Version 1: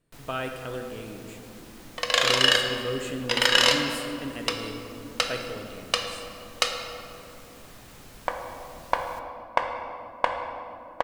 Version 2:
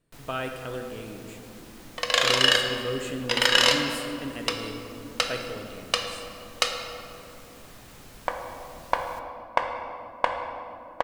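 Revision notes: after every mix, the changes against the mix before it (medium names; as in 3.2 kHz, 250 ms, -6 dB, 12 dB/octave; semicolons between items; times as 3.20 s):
no change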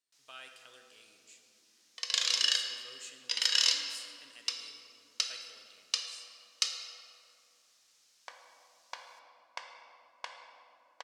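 first sound -8.5 dB; master: add band-pass filter 5.6 kHz, Q 1.9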